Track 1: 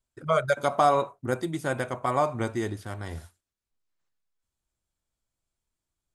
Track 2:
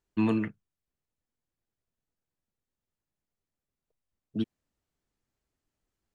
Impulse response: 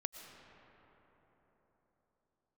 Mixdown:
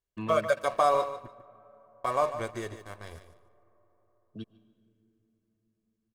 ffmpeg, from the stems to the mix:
-filter_complex "[0:a]equalizer=frequency=150:width=1.3:gain=-8.5,aeval=exprs='sgn(val(0))*max(abs(val(0))-0.00841,0)':channel_layout=same,volume=-4dB,asplit=3[link_01][link_02][link_03];[link_01]atrim=end=1.28,asetpts=PTS-STARTPTS,afade=type=out:start_time=1.276:duration=0.004:curve=hsin[link_04];[link_02]atrim=start=1.28:end=2.04,asetpts=PTS-STARTPTS,volume=0[link_05];[link_03]atrim=start=2.04,asetpts=PTS-STARTPTS,afade=type=in:duration=0.004:curve=hsin[link_06];[link_04][link_05][link_06]concat=n=3:v=0:a=1,asplit=3[link_07][link_08][link_09];[link_08]volume=-16dB[link_10];[link_09]volume=-10.5dB[link_11];[1:a]volume=-10.5dB,asplit=3[link_12][link_13][link_14];[link_13]volume=-9.5dB[link_15];[link_14]volume=-21.5dB[link_16];[2:a]atrim=start_sample=2205[link_17];[link_10][link_15]amix=inputs=2:normalize=0[link_18];[link_18][link_17]afir=irnorm=-1:irlink=0[link_19];[link_11][link_16]amix=inputs=2:normalize=0,aecho=0:1:147|294|441:1|0.2|0.04[link_20];[link_07][link_12][link_19][link_20]amix=inputs=4:normalize=0,aecho=1:1:1.8:0.46"

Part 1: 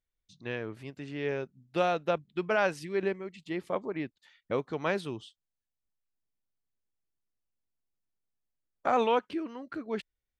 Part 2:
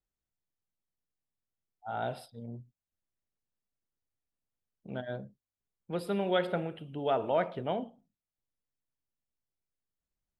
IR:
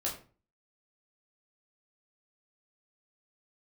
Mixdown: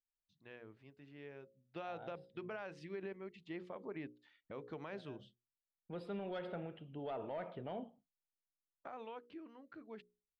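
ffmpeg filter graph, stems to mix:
-filter_complex "[0:a]bandreject=frequency=60:width_type=h:width=6,bandreject=frequency=120:width_type=h:width=6,bandreject=frequency=180:width_type=h:width=6,bandreject=frequency=240:width_type=h:width=6,bandreject=frequency=300:width_type=h:width=6,bandreject=frequency=360:width_type=h:width=6,bandreject=frequency=420:width_type=h:width=6,bandreject=frequency=480:width_type=h:width=6,bandreject=frequency=540:width_type=h:width=6,acompressor=threshold=-30dB:ratio=6,volume=-8dB,afade=type=in:start_time=1.47:duration=0.69:silence=0.354813,afade=type=out:start_time=4.94:duration=0.38:silence=0.446684,asplit=2[link_01][link_02];[1:a]agate=range=-33dB:threshold=-52dB:ratio=3:detection=peak,asoftclip=type=tanh:threshold=-20.5dB,volume=-8dB[link_03];[link_02]apad=whole_len=458283[link_04];[link_03][link_04]sidechaincompress=threshold=-51dB:ratio=8:attack=7.3:release=647[link_05];[link_01][link_05]amix=inputs=2:normalize=0,lowpass=3800,alimiter=level_in=11.5dB:limit=-24dB:level=0:latency=1:release=67,volume=-11.5dB"

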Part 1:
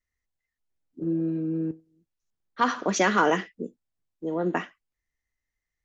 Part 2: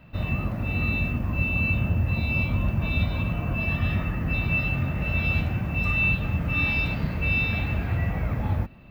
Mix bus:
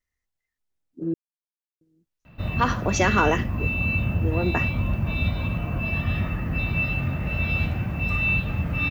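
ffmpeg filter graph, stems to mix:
ffmpeg -i stem1.wav -i stem2.wav -filter_complex "[0:a]volume=0.5dB,asplit=3[link_01][link_02][link_03];[link_01]atrim=end=1.14,asetpts=PTS-STARTPTS,afade=type=out:start_time=1.136:duration=0.004:curve=hsin[link_04];[link_02]atrim=start=1.14:end=1.81,asetpts=PTS-STARTPTS,volume=0[link_05];[link_03]atrim=start=1.81,asetpts=PTS-STARTPTS,afade=type=in:duration=0.004:curve=hsin[link_06];[link_04][link_05][link_06]concat=n=3:v=0:a=1[link_07];[1:a]adelay=2250,volume=0dB[link_08];[link_07][link_08]amix=inputs=2:normalize=0" out.wav

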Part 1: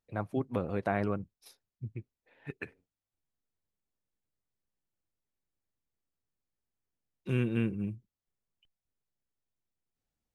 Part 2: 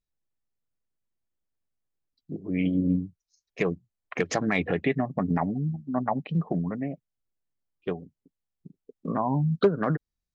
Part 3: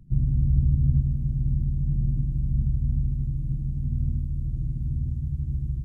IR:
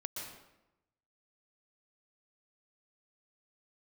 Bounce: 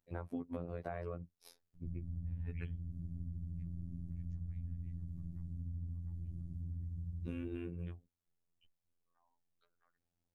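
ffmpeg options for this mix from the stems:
-filter_complex "[0:a]tiltshelf=frequency=780:gain=3.5,alimiter=limit=-19.5dB:level=0:latency=1,volume=2.5dB,asplit=2[link_01][link_02];[1:a]highpass=1300,volume=-9dB[link_03];[2:a]adelay=1750,volume=-6.5dB[link_04];[link_02]apad=whole_len=456094[link_05];[link_03][link_05]sidechaingate=range=-30dB:threshold=-54dB:ratio=16:detection=peak[link_06];[link_01][link_06][link_04]amix=inputs=3:normalize=0,afftfilt=real='hypot(re,im)*cos(PI*b)':imag='0':win_size=2048:overlap=0.75,acompressor=threshold=-39dB:ratio=4"

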